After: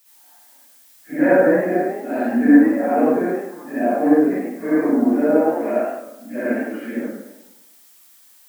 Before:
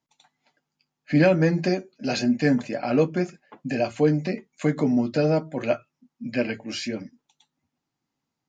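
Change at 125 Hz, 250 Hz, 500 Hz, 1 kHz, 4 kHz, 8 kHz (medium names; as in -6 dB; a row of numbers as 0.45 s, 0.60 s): -11.0 dB, +7.0 dB, +6.0 dB, +9.0 dB, under -15 dB, no reading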